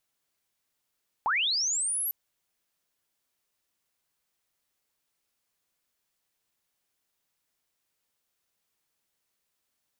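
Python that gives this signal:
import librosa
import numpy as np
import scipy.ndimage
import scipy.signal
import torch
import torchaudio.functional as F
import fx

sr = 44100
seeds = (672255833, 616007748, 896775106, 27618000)

y = fx.chirp(sr, length_s=0.85, from_hz=780.0, to_hz=12000.0, law='linear', from_db=-23.0, to_db=-27.5)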